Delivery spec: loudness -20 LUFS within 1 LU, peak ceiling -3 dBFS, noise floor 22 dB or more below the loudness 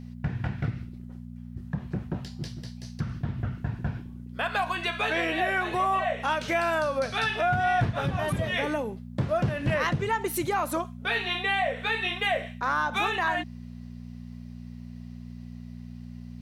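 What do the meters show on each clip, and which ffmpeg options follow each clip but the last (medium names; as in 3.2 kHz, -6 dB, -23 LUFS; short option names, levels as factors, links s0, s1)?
hum 60 Hz; highest harmonic 240 Hz; hum level -38 dBFS; loudness -28.0 LUFS; peak level -14.5 dBFS; loudness target -20.0 LUFS
-> -af "bandreject=f=60:t=h:w=4,bandreject=f=120:t=h:w=4,bandreject=f=180:t=h:w=4,bandreject=f=240:t=h:w=4"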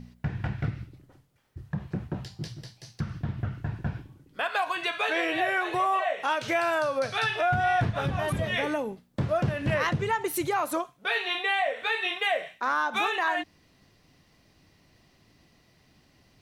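hum not found; loudness -28.0 LUFS; peak level -15.5 dBFS; loudness target -20.0 LUFS
-> -af "volume=2.51"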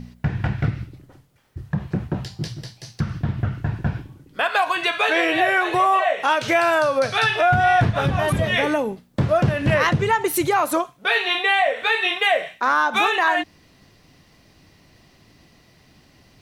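loudness -20.0 LUFS; peak level -7.5 dBFS; noise floor -55 dBFS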